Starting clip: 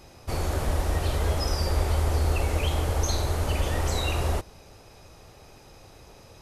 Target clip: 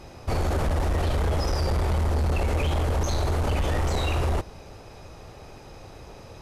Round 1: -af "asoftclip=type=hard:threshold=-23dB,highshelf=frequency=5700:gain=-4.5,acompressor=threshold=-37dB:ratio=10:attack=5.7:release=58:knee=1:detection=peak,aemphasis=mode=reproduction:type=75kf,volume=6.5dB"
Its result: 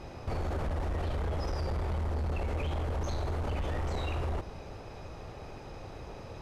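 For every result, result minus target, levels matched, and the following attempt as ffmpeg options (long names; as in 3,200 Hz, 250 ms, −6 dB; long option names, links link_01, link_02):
downward compressor: peak gain reduction +8 dB; 8,000 Hz band −5.0 dB
-af "asoftclip=type=hard:threshold=-23dB,highshelf=frequency=5700:gain=-4.5,acompressor=threshold=-27.5dB:ratio=10:attack=5.7:release=58:knee=1:detection=peak,aemphasis=mode=reproduction:type=75kf,volume=6.5dB"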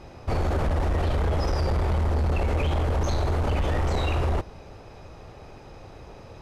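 8,000 Hz band −6.0 dB
-af "asoftclip=type=hard:threshold=-23dB,highshelf=frequency=5700:gain=7,acompressor=threshold=-27.5dB:ratio=10:attack=5.7:release=58:knee=1:detection=peak,aemphasis=mode=reproduction:type=75kf,volume=6.5dB"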